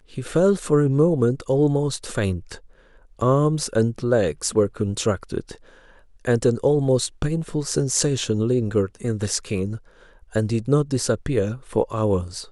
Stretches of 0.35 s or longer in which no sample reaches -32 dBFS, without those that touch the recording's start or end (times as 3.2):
2.57–3.19
5.55–6.25
9.77–10.33